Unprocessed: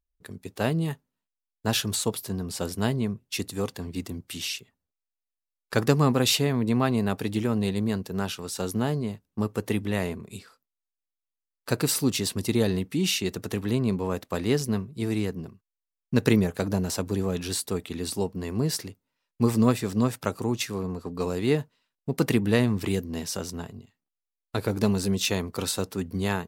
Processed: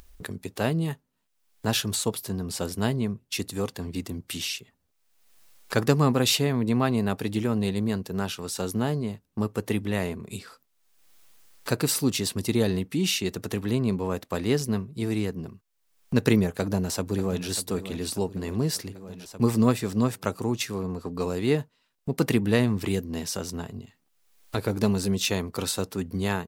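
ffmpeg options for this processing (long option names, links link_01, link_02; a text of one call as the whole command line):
ffmpeg -i in.wav -filter_complex "[0:a]asplit=2[link_01][link_02];[link_02]afade=type=in:start_time=16.52:duration=0.01,afade=type=out:start_time=17.48:duration=0.01,aecho=0:1:590|1180|1770|2360|2950|3540:0.237137|0.130426|0.0717341|0.0394537|0.0216996|0.0119348[link_03];[link_01][link_03]amix=inputs=2:normalize=0,acompressor=mode=upward:threshold=-28dB:ratio=2.5" out.wav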